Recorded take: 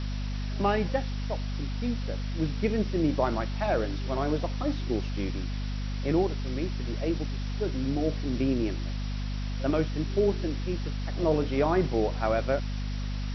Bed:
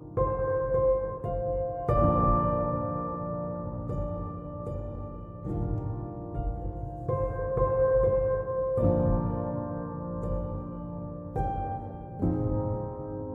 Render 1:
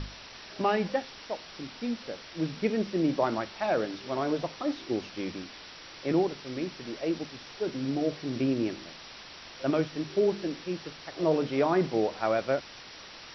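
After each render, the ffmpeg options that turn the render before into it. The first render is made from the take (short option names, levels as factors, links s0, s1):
-af "bandreject=f=50:t=h:w=6,bandreject=f=100:t=h:w=6,bandreject=f=150:t=h:w=6,bandreject=f=200:t=h:w=6,bandreject=f=250:t=h:w=6"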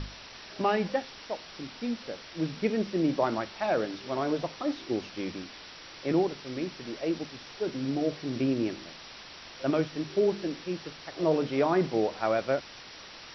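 -af anull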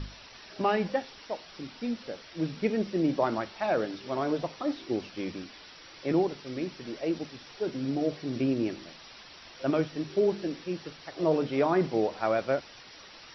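-af "afftdn=nr=6:nf=-47"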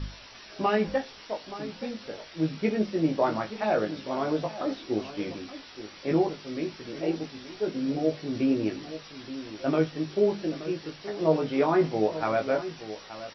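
-filter_complex "[0:a]asplit=2[s0][s1];[s1]adelay=19,volume=0.668[s2];[s0][s2]amix=inputs=2:normalize=0,asplit=2[s3][s4];[s4]adelay=874.6,volume=0.224,highshelf=f=4000:g=-19.7[s5];[s3][s5]amix=inputs=2:normalize=0"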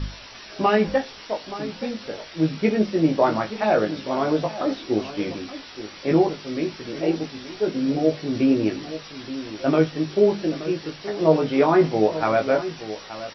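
-af "volume=2"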